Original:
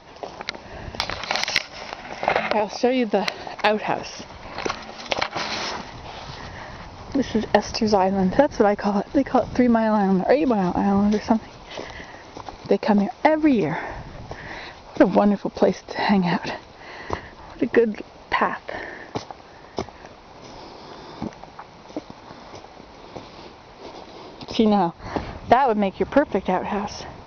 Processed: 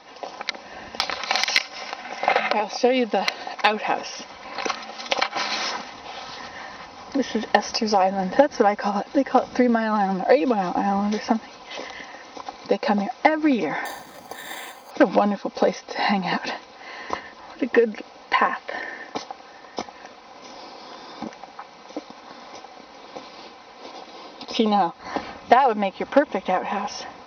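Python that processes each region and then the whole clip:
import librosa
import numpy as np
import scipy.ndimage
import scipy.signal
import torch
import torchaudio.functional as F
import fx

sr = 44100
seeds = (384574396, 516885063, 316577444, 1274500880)

y = fx.chain(x, sr, fx.highpass(hz=150.0, slope=6),
    fx.resample_bad(factor=8, down='filtered', up='hold'), at=(13.85, 14.91))
y = fx.highpass(y, sr, hz=470.0, slope=6)
y = y + 0.52 * np.pad(y, (int(3.9 * sr / 1000.0), 0))[:len(y)]
y = y * librosa.db_to_amplitude(1.0)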